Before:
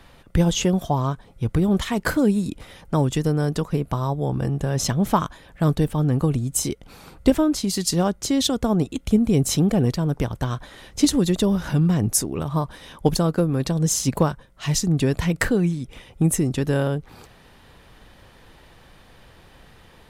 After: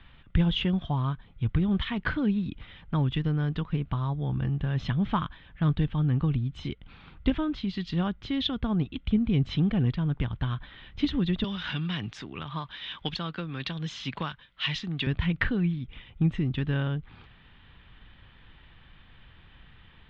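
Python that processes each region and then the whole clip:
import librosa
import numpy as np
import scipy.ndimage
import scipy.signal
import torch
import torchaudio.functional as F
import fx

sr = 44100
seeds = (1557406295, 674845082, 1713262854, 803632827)

y = fx.chain(x, sr, fx.tilt_eq(slope=3.5),
    fx.band_squash(depth_pct=40), at=(11.44, 15.07))
y = scipy.signal.sosfilt(scipy.signal.ellip(4, 1.0, 80, 3400.0, 'lowpass', fs=sr, output='sos'), y)
y = fx.peak_eq(y, sr, hz=540.0, db=-14.5, octaves=2.0)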